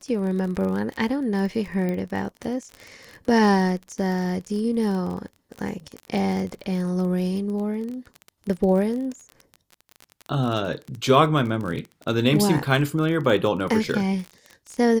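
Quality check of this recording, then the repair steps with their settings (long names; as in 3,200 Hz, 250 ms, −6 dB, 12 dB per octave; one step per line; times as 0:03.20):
surface crackle 33 per second −29 dBFS
0:01.89: click −17 dBFS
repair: click removal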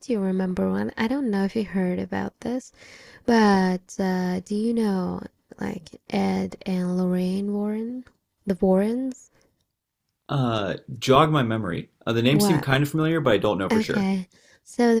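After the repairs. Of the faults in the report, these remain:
none of them is left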